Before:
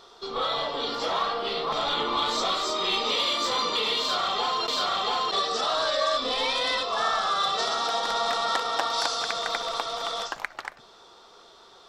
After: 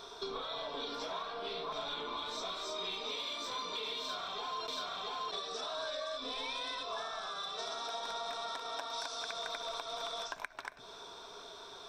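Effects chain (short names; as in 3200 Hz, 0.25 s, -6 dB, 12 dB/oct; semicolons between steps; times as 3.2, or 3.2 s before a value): compressor 12:1, threshold -39 dBFS, peak gain reduction 18.5 dB; ripple EQ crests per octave 1.6, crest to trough 8 dB; gain +1 dB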